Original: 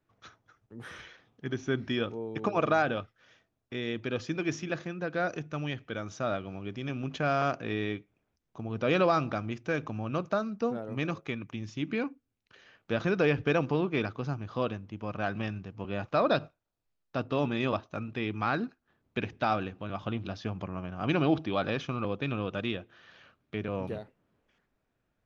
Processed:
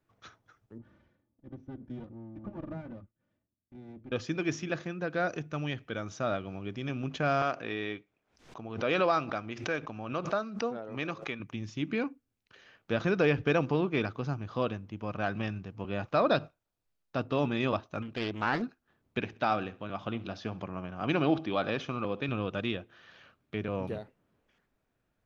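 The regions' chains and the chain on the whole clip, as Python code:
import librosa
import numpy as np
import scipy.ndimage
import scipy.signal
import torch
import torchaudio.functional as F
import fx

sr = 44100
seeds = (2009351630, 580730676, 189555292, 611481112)

y = fx.chain(x, sr, fx.lower_of_two(delay_ms=3.4),
    fx.bandpass_q(hz=130.0, q=1.2), at=(0.78, 4.12))
y = fx.chain(y, sr, fx.lowpass(hz=5900.0, slope=12),
    fx.low_shelf(hz=240.0, db=-11.5),
    fx.pre_swell(db_per_s=110.0), at=(7.42, 11.4))
y = fx.chain(y, sr, fx.peak_eq(hz=120.0, db=-5.5, octaves=0.73),
    fx.doppler_dist(depth_ms=0.42), at=(18.02, 18.62))
y = fx.chain(y, sr, fx.highpass(hz=150.0, slope=6),
    fx.high_shelf(hz=6400.0, db=-3.0),
    fx.echo_feedback(ms=65, feedback_pct=40, wet_db=-20.0), at=(19.19, 22.29))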